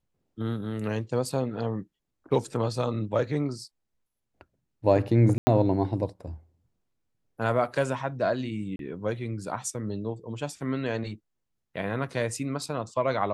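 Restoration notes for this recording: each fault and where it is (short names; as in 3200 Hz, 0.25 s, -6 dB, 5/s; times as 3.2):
5.38–5.47 gap 90 ms
8.76–8.79 gap 32 ms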